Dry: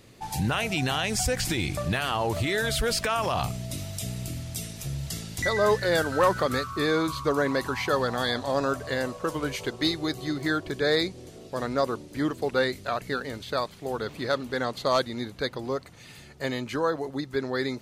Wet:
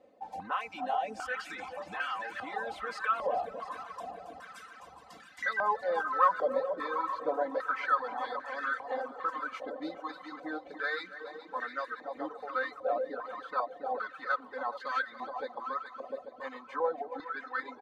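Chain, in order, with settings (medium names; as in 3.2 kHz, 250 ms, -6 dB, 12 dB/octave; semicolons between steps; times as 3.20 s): comb 3.9 ms, depth 94%; multi-head delay 140 ms, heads second and third, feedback 69%, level -8.5 dB; in parallel at -10.5 dB: hard clipper -26 dBFS, distortion -6 dB; on the sum: reverb removal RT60 1.9 s; step-sequenced band-pass 2.5 Hz 620–1600 Hz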